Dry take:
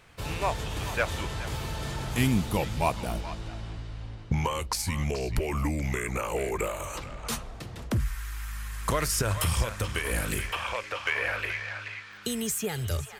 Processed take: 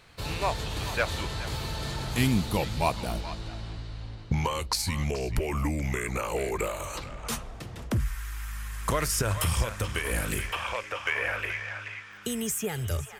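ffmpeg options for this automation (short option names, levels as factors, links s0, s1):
-af "asetnsamples=n=441:p=0,asendcmd='5.1 equalizer g -3;6.01 equalizer g 6.5;7.09 equalizer g -2.5;10.83 equalizer g -10',equalizer=f=4200:t=o:w=0.3:g=8.5"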